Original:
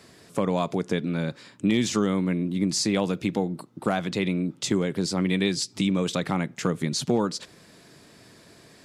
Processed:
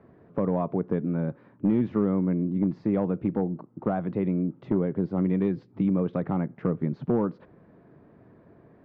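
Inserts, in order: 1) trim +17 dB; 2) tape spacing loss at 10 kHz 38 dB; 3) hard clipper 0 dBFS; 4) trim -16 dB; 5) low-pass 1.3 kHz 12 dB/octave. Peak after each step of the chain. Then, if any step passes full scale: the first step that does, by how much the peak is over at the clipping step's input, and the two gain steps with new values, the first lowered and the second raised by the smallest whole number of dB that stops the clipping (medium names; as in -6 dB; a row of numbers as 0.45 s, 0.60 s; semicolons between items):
+5.5 dBFS, +4.5 dBFS, 0.0 dBFS, -16.0 dBFS, -15.5 dBFS; step 1, 4.5 dB; step 1 +12 dB, step 4 -11 dB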